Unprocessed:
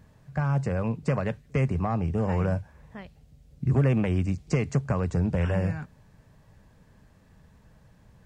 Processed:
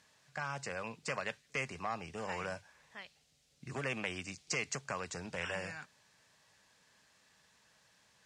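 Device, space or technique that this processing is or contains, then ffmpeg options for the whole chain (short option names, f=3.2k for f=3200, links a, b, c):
piezo pickup straight into a mixer: -af "lowpass=5.7k,aderivative,volume=11dB"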